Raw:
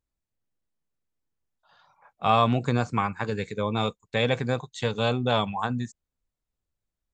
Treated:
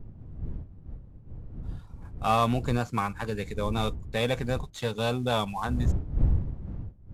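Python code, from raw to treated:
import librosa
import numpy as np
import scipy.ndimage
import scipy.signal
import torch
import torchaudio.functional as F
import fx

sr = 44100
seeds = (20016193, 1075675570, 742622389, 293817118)

y = fx.cvsd(x, sr, bps=64000)
y = fx.dmg_wind(y, sr, seeds[0], corner_hz=89.0, level_db=-30.0)
y = F.gain(torch.from_numpy(y), -2.5).numpy()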